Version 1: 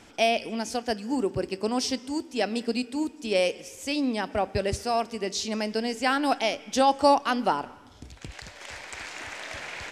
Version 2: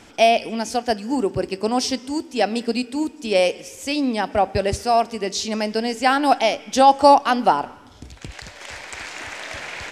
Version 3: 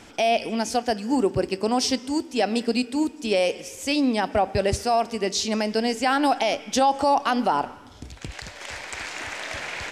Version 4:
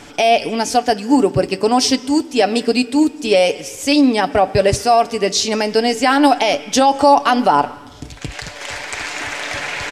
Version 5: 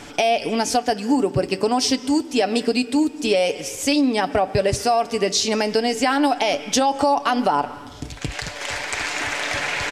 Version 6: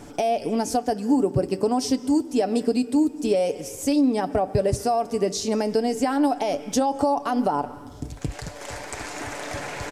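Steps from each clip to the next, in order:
dynamic EQ 760 Hz, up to +5 dB, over -35 dBFS, Q 2.3; gain +5 dB
limiter -11.5 dBFS, peak gain reduction 10.5 dB
comb 6.9 ms, depth 42%; gain +7.5 dB
compressor 3:1, threshold -17 dBFS, peak gain reduction 8.5 dB
bell 2800 Hz -14 dB 2.6 oct

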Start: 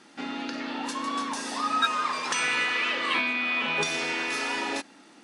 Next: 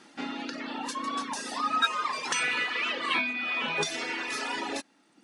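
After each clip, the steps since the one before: reverb removal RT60 1.2 s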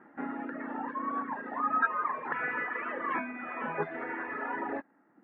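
elliptic low-pass 1800 Hz, stop band 80 dB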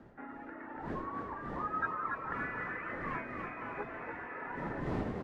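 wind noise 260 Hz -31 dBFS; low shelf 210 Hz -11.5 dB; frequency-shifting echo 0.287 s, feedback 51%, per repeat +51 Hz, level -5 dB; gain -7.5 dB

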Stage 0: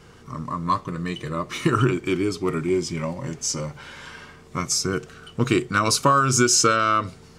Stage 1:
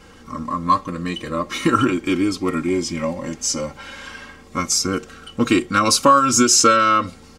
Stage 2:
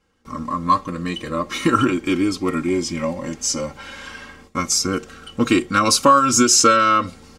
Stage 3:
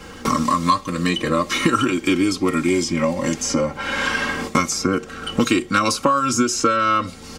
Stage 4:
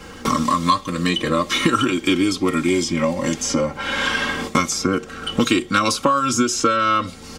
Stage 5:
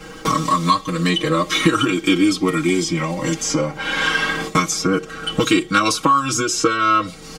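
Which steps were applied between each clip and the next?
comb 3.7 ms, depth 72%; gain +2.5 dB
gate with hold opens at -34 dBFS
three-band squash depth 100%; gain -1 dB
dynamic EQ 3400 Hz, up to +7 dB, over -46 dBFS, Q 5.1
comb 6.3 ms, depth 85%; gain -1 dB

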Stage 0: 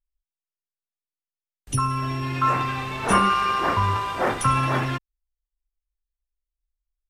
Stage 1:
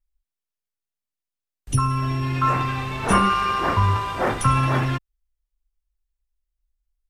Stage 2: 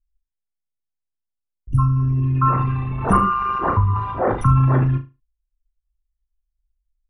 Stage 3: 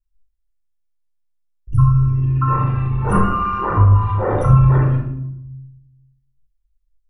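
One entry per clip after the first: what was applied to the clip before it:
low shelf 150 Hz +8 dB
formant sharpening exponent 2; low-pass opened by the level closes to 840 Hz, open at -17 dBFS; flutter echo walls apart 6.4 m, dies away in 0.26 s; gain +2.5 dB
shoebox room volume 2100 m³, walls furnished, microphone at 4.5 m; gain -4.5 dB

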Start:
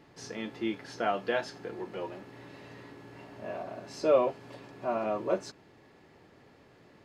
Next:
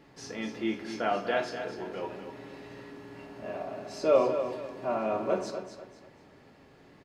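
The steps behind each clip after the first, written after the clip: feedback echo 0.246 s, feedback 32%, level -9 dB; on a send at -5 dB: reverb RT60 0.55 s, pre-delay 4 ms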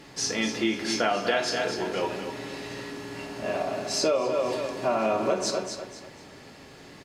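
bell 7500 Hz +11.5 dB 2.5 oct; compressor 16:1, threshold -28 dBFS, peak gain reduction 12.5 dB; gain +7.5 dB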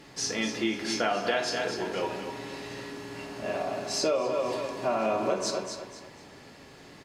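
narrowing echo 61 ms, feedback 77%, band-pass 1000 Hz, level -13 dB; gain -2.5 dB

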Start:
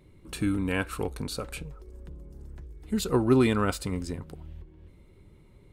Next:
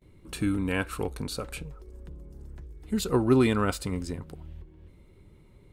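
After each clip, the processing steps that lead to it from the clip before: gate with hold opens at -50 dBFS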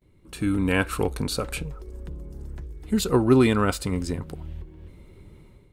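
AGC gain up to 11.5 dB; gain -4.5 dB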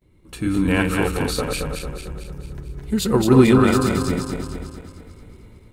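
regenerating reverse delay 0.112 s, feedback 72%, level -3 dB; gain +1.5 dB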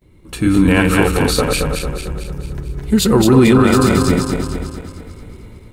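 maximiser +9 dB; gain -1 dB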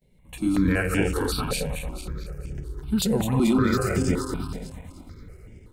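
step phaser 5.3 Hz 320–4000 Hz; gain -8 dB

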